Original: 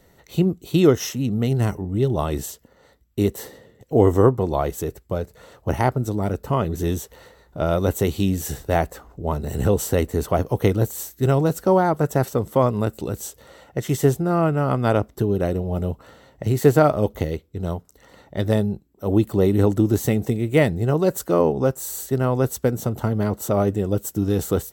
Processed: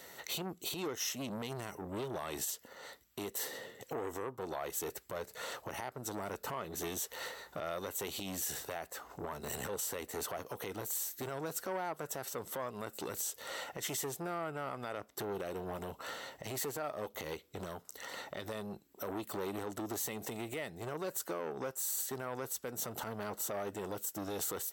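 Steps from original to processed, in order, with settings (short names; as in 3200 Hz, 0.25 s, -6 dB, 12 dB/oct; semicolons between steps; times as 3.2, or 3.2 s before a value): HPF 1200 Hz 6 dB/oct; compressor 6:1, threshold -42 dBFS, peak gain reduction 22.5 dB; limiter -36 dBFS, peak gain reduction 11.5 dB; core saturation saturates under 720 Hz; gain +9.5 dB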